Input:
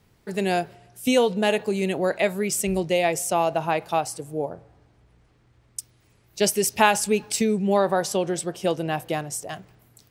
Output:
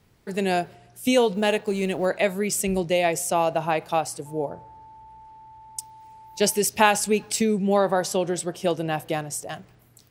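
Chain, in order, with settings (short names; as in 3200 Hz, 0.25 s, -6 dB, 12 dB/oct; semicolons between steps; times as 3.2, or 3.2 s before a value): 1.33–2.06 G.711 law mismatch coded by A; 4.25–6.59 whine 880 Hz -44 dBFS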